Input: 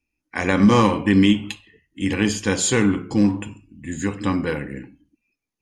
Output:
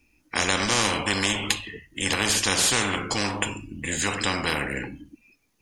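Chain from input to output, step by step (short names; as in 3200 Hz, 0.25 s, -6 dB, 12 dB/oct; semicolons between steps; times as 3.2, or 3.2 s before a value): spectral compressor 4:1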